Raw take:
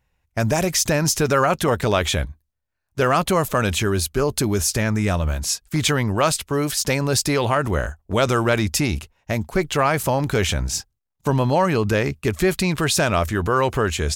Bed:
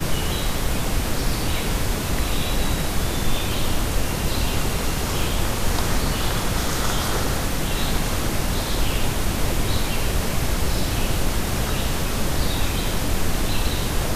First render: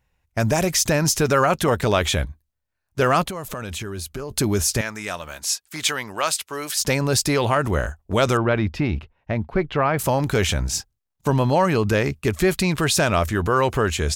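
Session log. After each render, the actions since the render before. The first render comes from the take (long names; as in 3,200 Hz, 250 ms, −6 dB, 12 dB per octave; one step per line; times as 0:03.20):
0:03.24–0:04.31: downward compressor, threshold −27 dBFS
0:04.81–0:06.76: high-pass filter 1,100 Hz 6 dB per octave
0:08.37–0:09.99: high-frequency loss of the air 350 metres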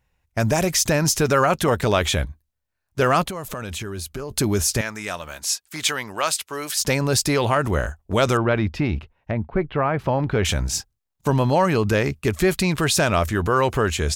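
0:09.31–0:10.45: high-frequency loss of the air 340 metres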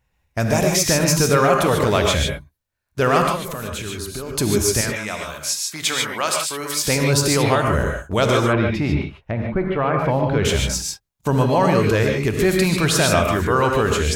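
reverb whose tail is shaped and stops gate 170 ms rising, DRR 1 dB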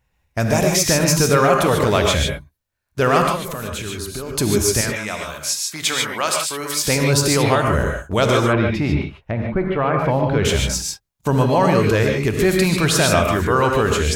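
level +1 dB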